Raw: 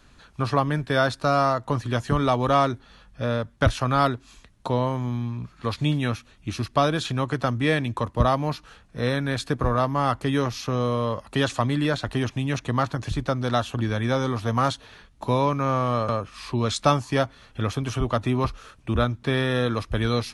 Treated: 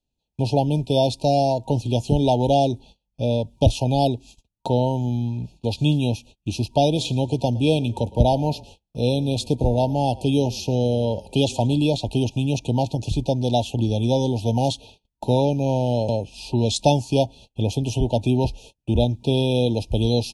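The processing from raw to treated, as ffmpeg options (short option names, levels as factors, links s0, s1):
-filter_complex "[0:a]asplit=3[s0][s1][s2];[s0]afade=t=out:st=6.94:d=0.02[s3];[s1]asplit=4[s4][s5][s6][s7];[s5]adelay=112,afreqshift=-31,volume=0.0841[s8];[s6]adelay=224,afreqshift=-62,volume=0.0313[s9];[s7]adelay=336,afreqshift=-93,volume=0.0115[s10];[s4][s8][s9][s10]amix=inputs=4:normalize=0,afade=t=in:st=6.94:d=0.02,afade=t=out:st=11.82:d=0.02[s11];[s2]afade=t=in:st=11.82:d=0.02[s12];[s3][s11][s12]amix=inputs=3:normalize=0,afftfilt=real='re*(1-between(b*sr/4096,940,2400))':imag='im*(1-between(b*sr/4096,940,2400))':win_size=4096:overlap=0.75,agate=range=0.0282:threshold=0.00501:ratio=16:detection=peak,equalizer=f=2000:w=3.9:g=-11.5,volume=1.58"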